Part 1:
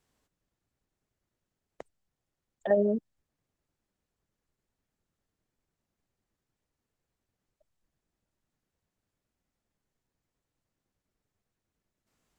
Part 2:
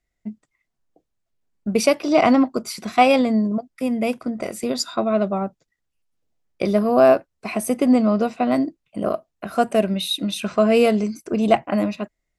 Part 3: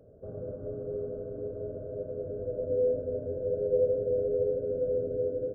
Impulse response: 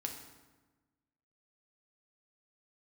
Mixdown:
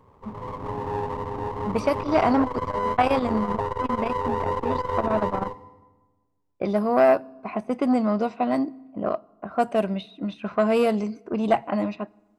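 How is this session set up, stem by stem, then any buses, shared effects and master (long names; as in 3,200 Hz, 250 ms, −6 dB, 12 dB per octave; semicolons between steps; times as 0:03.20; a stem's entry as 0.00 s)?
−8.5 dB, 0.00 s, no send, no processing
−5.0 dB, 0.00 s, send −18.5 dB, de-essing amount 70%; low-pass that shuts in the quiet parts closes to 790 Hz, open at −13 dBFS
−2.0 dB, 0.00 s, send −8.5 dB, lower of the sound and its delayed copy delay 0.67 ms; automatic gain control gain up to 8 dB; brickwall limiter −19 dBFS, peak gain reduction 8.5 dB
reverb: on, RT60 1.2 s, pre-delay 4 ms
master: parametric band 960 Hz +6.5 dB 0.67 octaves; saturating transformer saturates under 630 Hz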